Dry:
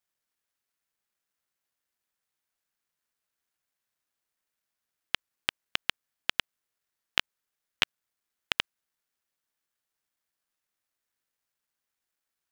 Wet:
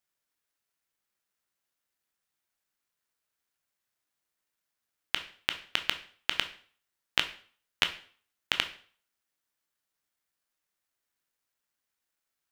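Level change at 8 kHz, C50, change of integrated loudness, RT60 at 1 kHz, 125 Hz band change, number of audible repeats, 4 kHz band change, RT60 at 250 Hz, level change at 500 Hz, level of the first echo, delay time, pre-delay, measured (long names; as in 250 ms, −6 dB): +0.5 dB, 13.0 dB, +0.5 dB, 0.45 s, +0.5 dB, no echo audible, +1.0 dB, 0.45 s, +0.5 dB, no echo audible, no echo audible, 6 ms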